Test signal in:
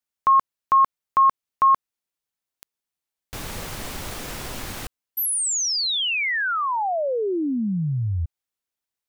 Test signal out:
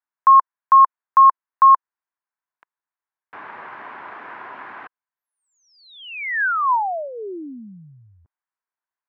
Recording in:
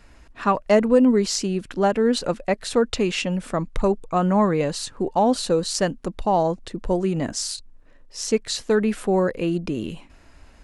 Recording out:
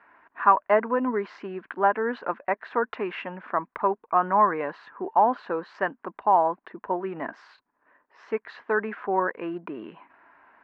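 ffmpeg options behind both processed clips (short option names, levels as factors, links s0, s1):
-af "highpass=480,equalizer=f=520:t=q:w=4:g=-8,equalizer=f=1000:t=q:w=4:g=8,equalizer=f=1600:t=q:w=4:g=5,lowpass=f=2000:w=0.5412,lowpass=f=2000:w=1.3066"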